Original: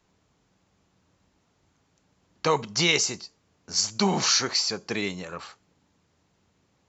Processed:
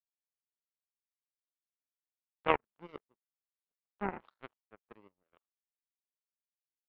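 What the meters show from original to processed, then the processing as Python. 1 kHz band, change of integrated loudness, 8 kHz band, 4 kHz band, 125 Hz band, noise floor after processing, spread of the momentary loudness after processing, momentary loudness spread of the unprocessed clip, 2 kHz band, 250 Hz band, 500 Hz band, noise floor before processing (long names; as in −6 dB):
−7.5 dB, −11.0 dB, can't be measured, −29.0 dB, −18.5 dB, below −85 dBFS, 22 LU, 16 LU, −14.0 dB, −15.5 dB, −10.5 dB, −70 dBFS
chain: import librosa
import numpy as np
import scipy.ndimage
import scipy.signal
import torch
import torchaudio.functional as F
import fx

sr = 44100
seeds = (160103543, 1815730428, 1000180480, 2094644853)

y = scipy.signal.sosfilt(scipy.signal.butter(4, 1200.0, 'lowpass', fs=sr, output='sos'), x)
y = fx.peak_eq(y, sr, hz=99.0, db=-14.5, octaves=1.8)
y = fx.power_curve(y, sr, exponent=3.0)
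y = y * 10.0 ** (4.0 / 20.0)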